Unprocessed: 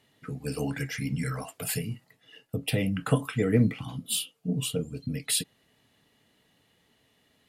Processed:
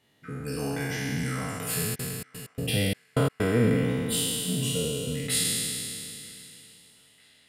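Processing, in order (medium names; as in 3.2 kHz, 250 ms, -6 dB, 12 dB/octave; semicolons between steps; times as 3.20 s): spectral sustain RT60 2.80 s; 1.94–3.44 s: trance gate "x..x.xx.x.xx" 128 bpm -60 dB; on a send: band-passed feedback delay 949 ms, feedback 61%, band-pass 2.1 kHz, level -21.5 dB; on the sum: trim -3.5 dB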